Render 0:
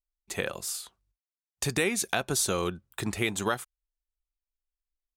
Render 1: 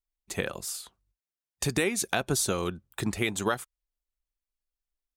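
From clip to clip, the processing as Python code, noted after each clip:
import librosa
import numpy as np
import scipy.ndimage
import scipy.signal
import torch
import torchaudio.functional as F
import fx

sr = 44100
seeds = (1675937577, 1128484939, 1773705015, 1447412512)

y = fx.hpss(x, sr, part='harmonic', gain_db=-5)
y = fx.low_shelf(y, sr, hz=390.0, db=5.0)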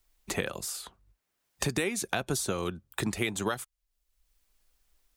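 y = fx.band_squash(x, sr, depth_pct=70)
y = y * librosa.db_to_amplitude(-2.0)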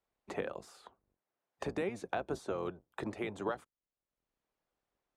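y = fx.octave_divider(x, sr, octaves=1, level_db=0.0)
y = fx.bandpass_q(y, sr, hz=620.0, q=0.9)
y = y * librosa.db_to_amplitude(-2.0)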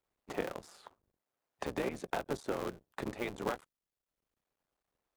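y = fx.cycle_switch(x, sr, every=3, mode='muted')
y = y * librosa.db_to_amplitude(2.0)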